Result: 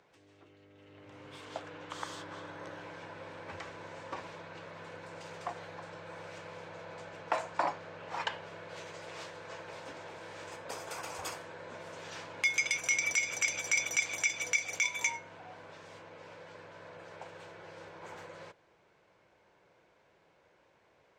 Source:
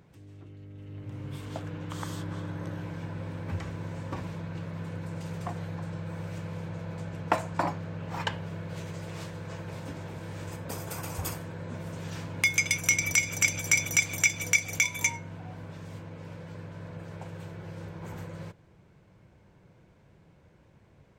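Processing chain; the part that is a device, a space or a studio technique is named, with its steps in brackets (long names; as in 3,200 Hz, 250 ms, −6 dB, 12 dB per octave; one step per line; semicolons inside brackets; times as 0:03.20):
DJ mixer with the lows and highs turned down (three-way crossover with the lows and the highs turned down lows −21 dB, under 390 Hz, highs −18 dB, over 7,800 Hz; brickwall limiter −17.5 dBFS, peak gain reduction 7.5 dB)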